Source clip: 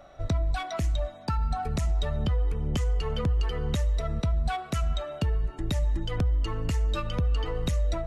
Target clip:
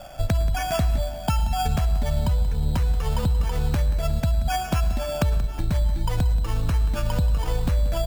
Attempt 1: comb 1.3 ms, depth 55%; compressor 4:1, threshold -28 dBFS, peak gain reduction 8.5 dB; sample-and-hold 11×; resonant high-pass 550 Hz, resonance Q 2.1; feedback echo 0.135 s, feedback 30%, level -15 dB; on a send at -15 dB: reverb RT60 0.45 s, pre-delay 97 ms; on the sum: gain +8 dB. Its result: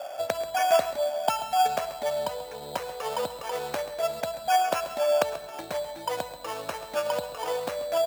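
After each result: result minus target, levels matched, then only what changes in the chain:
500 Hz band +9.5 dB; echo 46 ms early
remove: resonant high-pass 550 Hz, resonance Q 2.1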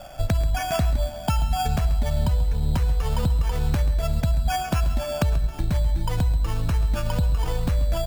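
echo 46 ms early
change: feedback echo 0.181 s, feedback 30%, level -15 dB

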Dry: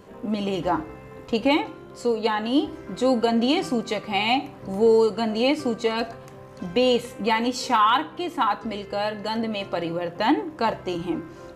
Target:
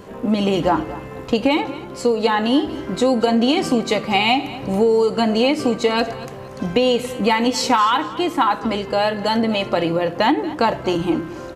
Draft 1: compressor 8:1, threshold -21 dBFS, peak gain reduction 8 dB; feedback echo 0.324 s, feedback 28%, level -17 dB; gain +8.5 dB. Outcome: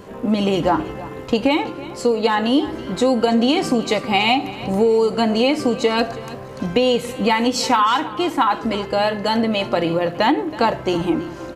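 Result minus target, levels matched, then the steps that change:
echo 90 ms late
change: feedback echo 0.234 s, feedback 28%, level -17 dB

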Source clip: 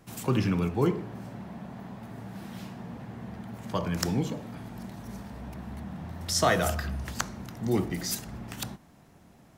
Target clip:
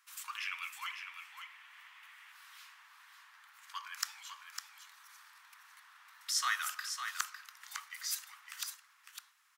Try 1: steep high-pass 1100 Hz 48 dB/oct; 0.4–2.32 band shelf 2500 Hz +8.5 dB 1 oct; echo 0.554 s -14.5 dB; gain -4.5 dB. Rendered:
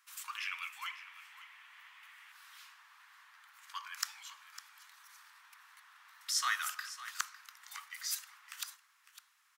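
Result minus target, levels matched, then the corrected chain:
echo-to-direct -7 dB
steep high-pass 1100 Hz 48 dB/oct; 0.4–2.32 band shelf 2500 Hz +8.5 dB 1 oct; echo 0.554 s -7.5 dB; gain -4.5 dB

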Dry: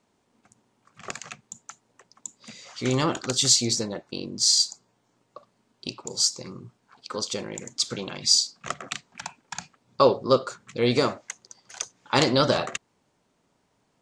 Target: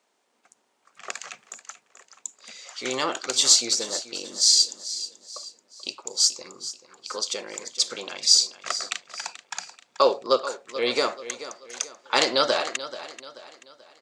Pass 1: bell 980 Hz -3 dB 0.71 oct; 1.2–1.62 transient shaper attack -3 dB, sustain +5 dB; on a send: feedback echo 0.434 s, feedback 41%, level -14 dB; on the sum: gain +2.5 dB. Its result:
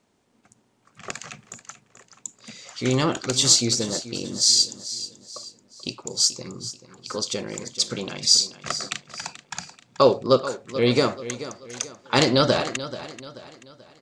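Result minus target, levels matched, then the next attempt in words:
500 Hz band +2.5 dB
HPF 530 Hz 12 dB/oct; bell 980 Hz -3 dB 0.71 oct; 1.2–1.62 transient shaper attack -3 dB, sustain +5 dB; on a send: feedback echo 0.434 s, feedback 41%, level -14 dB; on the sum: gain +2.5 dB

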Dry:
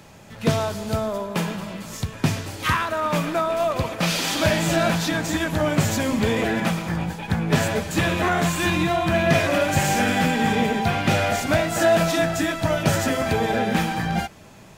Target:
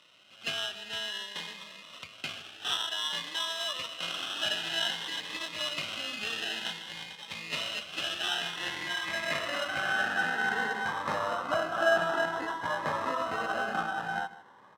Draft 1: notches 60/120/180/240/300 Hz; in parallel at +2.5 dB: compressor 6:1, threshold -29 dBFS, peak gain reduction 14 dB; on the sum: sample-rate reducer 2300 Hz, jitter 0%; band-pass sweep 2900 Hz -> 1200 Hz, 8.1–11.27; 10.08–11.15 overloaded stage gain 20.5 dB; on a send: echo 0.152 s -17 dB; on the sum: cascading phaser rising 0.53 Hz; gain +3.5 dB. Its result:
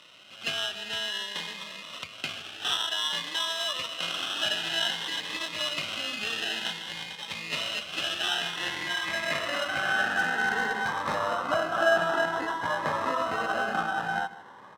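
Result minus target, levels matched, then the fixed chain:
compressor: peak gain reduction +14 dB
notches 60/120/180/240/300 Hz; sample-rate reducer 2300 Hz, jitter 0%; band-pass sweep 2900 Hz -> 1200 Hz, 8.1–11.27; 10.08–11.15 overloaded stage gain 20.5 dB; on a send: echo 0.152 s -17 dB; on the sum: cascading phaser rising 0.53 Hz; gain +3.5 dB

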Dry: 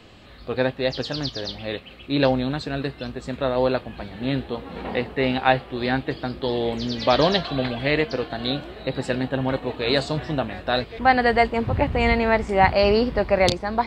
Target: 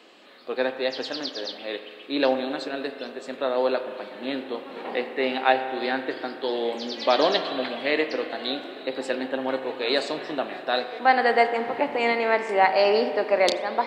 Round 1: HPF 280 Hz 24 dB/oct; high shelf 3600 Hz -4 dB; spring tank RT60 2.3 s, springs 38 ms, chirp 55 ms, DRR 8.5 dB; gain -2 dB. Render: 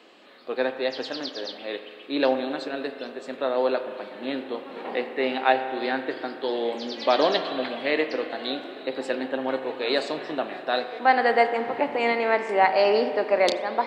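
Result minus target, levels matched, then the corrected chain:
8000 Hz band -3.0 dB
HPF 280 Hz 24 dB/oct; spring tank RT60 2.3 s, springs 38 ms, chirp 55 ms, DRR 8.5 dB; gain -2 dB

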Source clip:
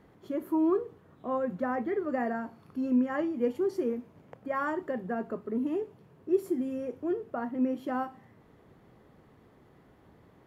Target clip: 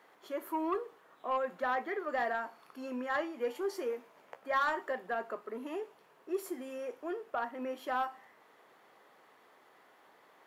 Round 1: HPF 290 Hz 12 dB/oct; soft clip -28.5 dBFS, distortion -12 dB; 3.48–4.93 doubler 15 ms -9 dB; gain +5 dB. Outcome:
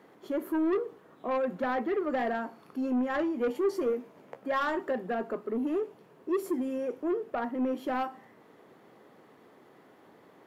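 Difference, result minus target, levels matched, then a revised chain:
250 Hz band +6.0 dB
HPF 770 Hz 12 dB/oct; soft clip -28.5 dBFS, distortion -17 dB; 3.48–4.93 doubler 15 ms -9 dB; gain +5 dB

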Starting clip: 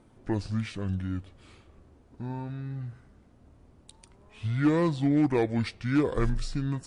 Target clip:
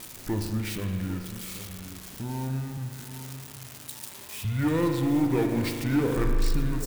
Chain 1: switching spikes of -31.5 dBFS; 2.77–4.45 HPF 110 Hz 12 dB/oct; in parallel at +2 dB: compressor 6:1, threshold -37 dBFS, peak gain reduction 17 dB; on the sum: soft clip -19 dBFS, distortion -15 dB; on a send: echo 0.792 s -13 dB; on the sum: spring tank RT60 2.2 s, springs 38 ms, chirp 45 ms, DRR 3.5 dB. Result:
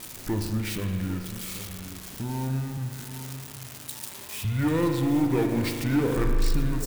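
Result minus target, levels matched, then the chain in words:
compressor: peak gain reduction -7.5 dB
switching spikes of -31.5 dBFS; 2.77–4.45 HPF 110 Hz 12 dB/oct; in parallel at +2 dB: compressor 6:1, threshold -46 dBFS, peak gain reduction 24.5 dB; on the sum: soft clip -19 dBFS, distortion -16 dB; on a send: echo 0.792 s -13 dB; on the sum: spring tank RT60 2.2 s, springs 38 ms, chirp 45 ms, DRR 3.5 dB

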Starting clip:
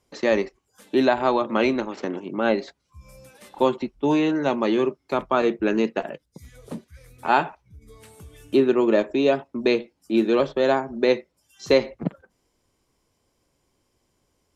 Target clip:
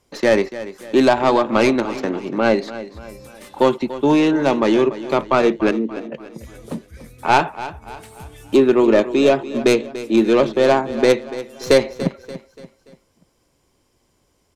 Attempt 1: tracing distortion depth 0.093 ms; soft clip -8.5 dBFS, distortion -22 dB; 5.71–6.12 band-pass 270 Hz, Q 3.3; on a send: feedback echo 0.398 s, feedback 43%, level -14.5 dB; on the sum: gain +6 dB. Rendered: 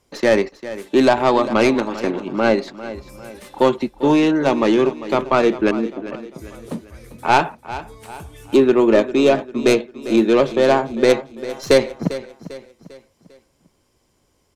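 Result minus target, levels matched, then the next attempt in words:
echo 0.109 s late
tracing distortion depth 0.093 ms; soft clip -8.5 dBFS, distortion -22 dB; 5.71–6.12 band-pass 270 Hz, Q 3.3; on a send: feedback echo 0.289 s, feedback 43%, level -14.5 dB; on the sum: gain +6 dB

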